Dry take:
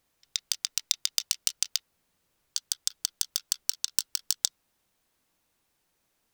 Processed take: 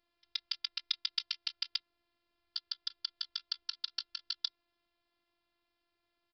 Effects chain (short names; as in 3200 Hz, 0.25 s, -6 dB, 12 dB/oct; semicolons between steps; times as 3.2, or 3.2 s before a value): downsampling 11025 Hz; robotiser 345 Hz; gain -2 dB